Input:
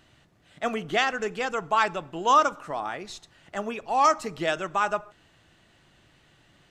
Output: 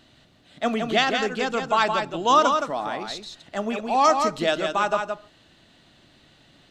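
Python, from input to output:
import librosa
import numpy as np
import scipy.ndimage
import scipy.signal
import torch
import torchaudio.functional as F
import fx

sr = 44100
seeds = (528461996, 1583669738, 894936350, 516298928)

y = fx.graphic_eq_15(x, sr, hz=(250, 630, 4000), db=(8, 4, 9))
y = y + 10.0 ** (-5.5 / 20.0) * np.pad(y, (int(169 * sr / 1000.0), 0))[:len(y)]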